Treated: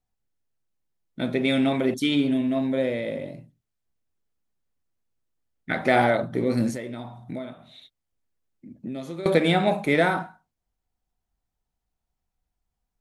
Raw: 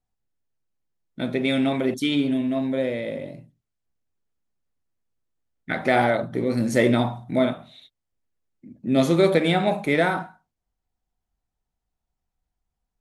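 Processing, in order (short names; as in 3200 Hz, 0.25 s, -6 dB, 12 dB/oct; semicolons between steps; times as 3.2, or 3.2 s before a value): 6.7–9.26 compressor 12:1, threshold -31 dBFS, peak gain reduction 18.5 dB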